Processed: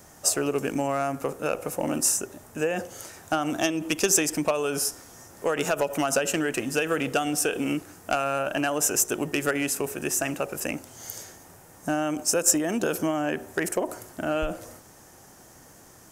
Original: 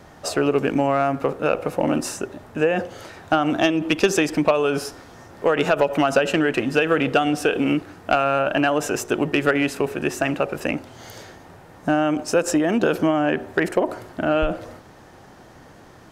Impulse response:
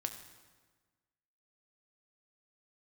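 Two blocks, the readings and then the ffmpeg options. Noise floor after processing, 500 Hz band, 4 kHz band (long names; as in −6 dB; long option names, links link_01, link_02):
−51 dBFS, −7.0 dB, −3.0 dB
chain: -af "equalizer=frequency=6800:width_type=o:width=2.5:gain=3,aexciter=amount=6.5:drive=2.9:freq=5700,volume=-7dB"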